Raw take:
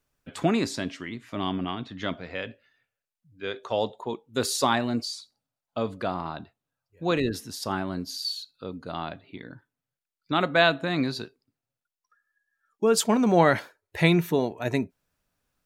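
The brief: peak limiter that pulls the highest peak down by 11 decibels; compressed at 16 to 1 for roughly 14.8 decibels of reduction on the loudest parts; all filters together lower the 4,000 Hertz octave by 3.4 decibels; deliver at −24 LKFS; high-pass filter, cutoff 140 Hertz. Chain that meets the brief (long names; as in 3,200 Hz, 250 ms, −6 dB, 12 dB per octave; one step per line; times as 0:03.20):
high-pass filter 140 Hz
parametric band 4,000 Hz −4 dB
downward compressor 16 to 1, threshold −29 dBFS
level +15.5 dB
brickwall limiter −12.5 dBFS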